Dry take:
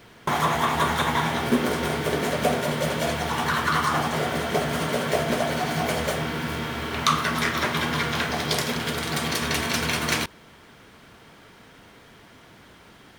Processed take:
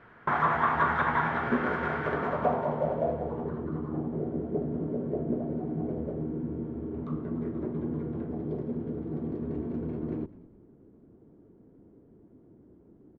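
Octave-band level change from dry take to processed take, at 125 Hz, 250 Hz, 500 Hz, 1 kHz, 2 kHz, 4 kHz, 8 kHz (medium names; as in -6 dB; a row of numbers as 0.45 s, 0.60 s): -5.5 dB, -3.0 dB, -5.0 dB, -5.5 dB, -8.5 dB, under -25 dB, under -40 dB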